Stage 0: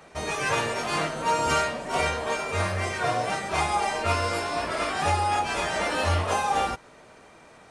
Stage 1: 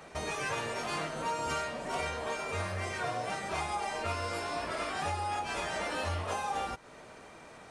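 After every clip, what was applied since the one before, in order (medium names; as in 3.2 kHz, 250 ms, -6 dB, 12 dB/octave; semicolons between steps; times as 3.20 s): compression 2.5:1, threshold -36 dBFS, peak gain reduction 11 dB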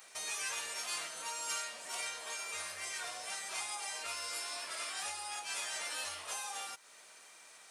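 differentiator; trim +6.5 dB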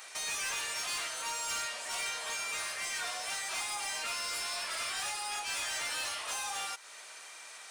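overdrive pedal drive 18 dB, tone 7.5 kHz, clips at -24 dBFS; trim -3 dB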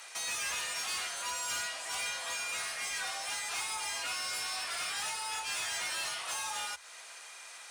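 frequency shift +53 Hz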